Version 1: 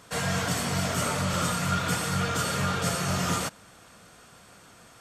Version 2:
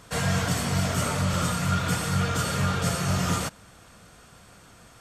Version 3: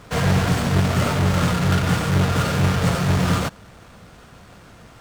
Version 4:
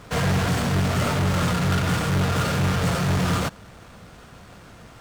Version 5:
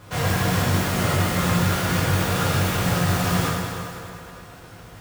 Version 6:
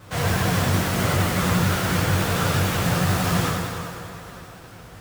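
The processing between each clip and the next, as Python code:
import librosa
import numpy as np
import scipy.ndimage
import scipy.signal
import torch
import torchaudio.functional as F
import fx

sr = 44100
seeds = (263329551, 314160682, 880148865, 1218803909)

y1 = fx.low_shelf(x, sr, hz=98.0, db=11.5)
y1 = fx.rider(y1, sr, range_db=10, speed_s=0.5)
y2 = fx.halfwave_hold(y1, sr)
y2 = fx.high_shelf(y2, sr, hz=9500.0, db=-11.5)
y2 = y2 * librosa.db_to_amplitude(1.5)
y3 = 10.0 ** (-17.5 / 20.0) * np.tanh(y2 / 10.0 ** (-17.5 / 20.0))
y4 = fx.mod_noise(y3, sr, seeds[0], snr_db=14)
y4 = fx.rev_fdn(y4, sr, rt60_s=2.8, lf_ratio=0.75, hf_ratio=0.8, size_ms=56.0, drr_db=-5.0)
y4 = y4 * librosa.db_to_amplitude(-4.5)
y5 = fx.vibrato(y4, sr, rate_hz=11.0, depth_cents=88.0)
y5 = y5 + 10.0 ** (-23.5 / 20.0) * np.pad(y5, (int(972 * sr / 1000.0), 0))[:len(y5)]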